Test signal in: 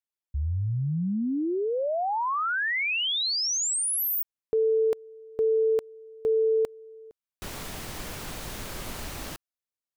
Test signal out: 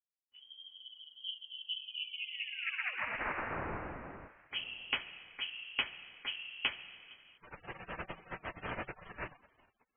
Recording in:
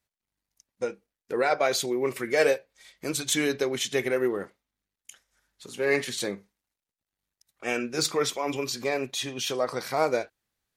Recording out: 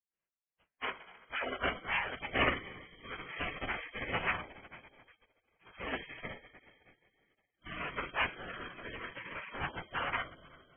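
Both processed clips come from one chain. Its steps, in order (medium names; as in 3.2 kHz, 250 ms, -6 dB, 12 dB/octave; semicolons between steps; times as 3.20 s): two-slope reverb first 0.22 s, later 2.6 s, from -22 dB, DRR -6.5 dB; spectral gate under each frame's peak -30 dB weak; frequency inversion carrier 3.2 kHz; trim +7 dB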